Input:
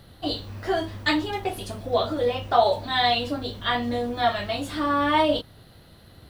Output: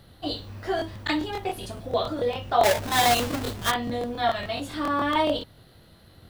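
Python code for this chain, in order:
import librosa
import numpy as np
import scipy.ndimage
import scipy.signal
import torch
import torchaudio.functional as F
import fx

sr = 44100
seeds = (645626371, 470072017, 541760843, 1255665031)

y = fx.halfwave_hold(x, sr, at=(2.61, 3.7), fade=0.02)
y = fx.buffer_crackle(y, sr, first_s=0.77, period_s=0.14, block=1024, kind='repeat')
y = y * 10.0 ** (-2.5 / 20.0)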